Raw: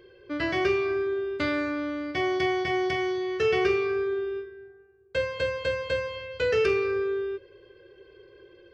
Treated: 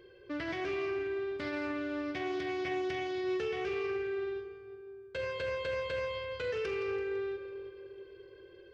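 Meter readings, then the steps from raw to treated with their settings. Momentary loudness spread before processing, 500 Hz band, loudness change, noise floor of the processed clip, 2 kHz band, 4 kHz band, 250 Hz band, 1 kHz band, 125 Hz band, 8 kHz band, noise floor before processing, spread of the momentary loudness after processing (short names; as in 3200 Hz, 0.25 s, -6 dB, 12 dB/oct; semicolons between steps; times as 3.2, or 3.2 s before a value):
9 LU, -8.0 dB, -8.5 dB, -55 dBFS, -8.5 dB, -8.5 dB, -7.5 dB, -8.5 dB, -9.0 dB, n/a, -55 dBFS, 14 LU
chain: limiter -25.5 dBFS, peak gain reduction 11.5 dB; split-band echo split 490 Hz, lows 0.337 s, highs 0.167 s, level -11.5 dB; Doppler distortion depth 0.12 ms; gain -3.5 dB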